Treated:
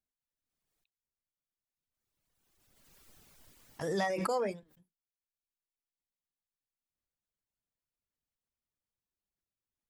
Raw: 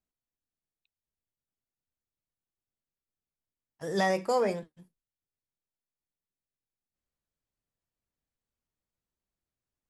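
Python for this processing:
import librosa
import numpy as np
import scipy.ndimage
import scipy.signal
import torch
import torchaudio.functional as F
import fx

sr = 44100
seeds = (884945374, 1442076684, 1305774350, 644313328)

y = fx.dereverb_blind(x, sr, rt60_s=1.0)
y = fx.pre_swell(y, sr, db_per_s=30.0)
y = y * librosa.db_to_amplitude(-5.0)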